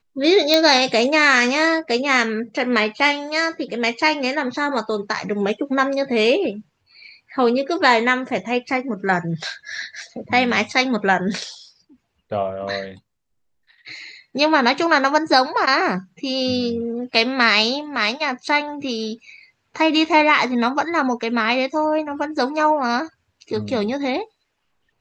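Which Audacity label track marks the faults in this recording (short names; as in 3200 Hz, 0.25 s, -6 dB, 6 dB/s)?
0.540000	0.540000	pop -2 dBFS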